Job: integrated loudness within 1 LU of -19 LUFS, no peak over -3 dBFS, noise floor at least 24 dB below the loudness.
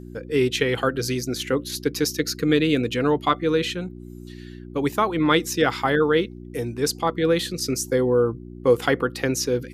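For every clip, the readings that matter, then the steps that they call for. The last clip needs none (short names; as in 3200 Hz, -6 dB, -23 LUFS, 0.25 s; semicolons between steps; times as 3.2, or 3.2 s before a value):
hum 60 Hz; harmonics up to 360 Hz; hum level -37 dBFS; loudness -22.5 LUFS; peak -5.5 dBFS; loudness target -19.0 LUFS
-> de-hum 60 Hz, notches 6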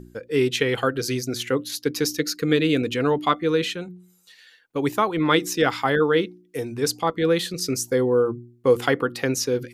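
hum none; loudness -23.0 LUFS; peak -5.0 dBFS; loudness target -19.0 LUFS
-> gain +4 dB; limiter -3 dBFS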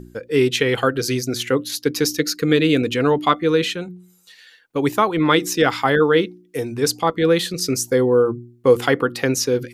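loudness -19.0 LUFS; peak -3.0 dBFS; noise floor -53 dBFS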